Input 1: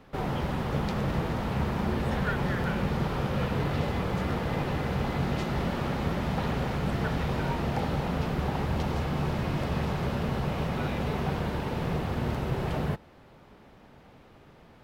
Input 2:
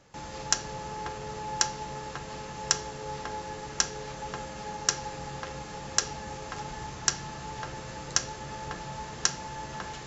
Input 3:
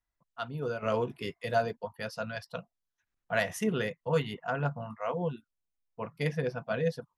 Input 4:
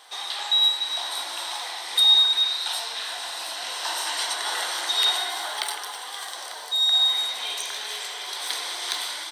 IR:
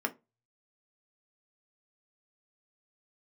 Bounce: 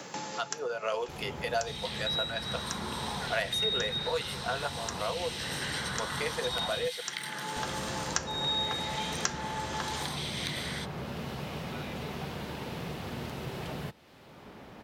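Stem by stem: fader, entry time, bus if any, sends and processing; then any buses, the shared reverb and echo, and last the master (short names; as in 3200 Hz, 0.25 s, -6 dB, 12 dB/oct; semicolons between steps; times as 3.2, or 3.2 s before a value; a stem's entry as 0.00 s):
-13.5 dB, 0.95 s, muted 6.88–7.56, no send, HPF 51 Hz
+0.5 dB, 0.00 s, no send, HPF 170 Hz 24 dB/oct; auto duck -15 dB, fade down 0.70 s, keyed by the third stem
+1.0 dB, 0.00 s, no send, HPF 430 Hz 24 dB/oct
-13.0 dB, 1.55 s, no send, LFO high-pass saw down 0.58 Hz 740–2700 Hz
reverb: off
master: three-band squash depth 70%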